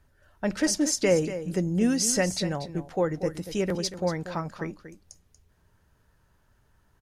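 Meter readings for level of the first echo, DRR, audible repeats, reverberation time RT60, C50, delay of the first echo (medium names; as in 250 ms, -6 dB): -12.0 dB, no reverb, 1, no reverb, no reverb, 236 ms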